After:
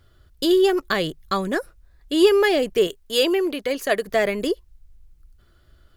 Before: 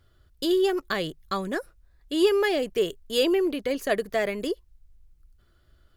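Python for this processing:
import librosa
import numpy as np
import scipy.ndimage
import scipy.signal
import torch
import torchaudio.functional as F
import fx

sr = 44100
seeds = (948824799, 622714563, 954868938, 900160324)

y = fx.low_shelf(x, sr, hz=310.0, db=-9.0, at=(2.87, 4.07))
y = F.gain(torch.from_numpy(y), 5.5).numpy()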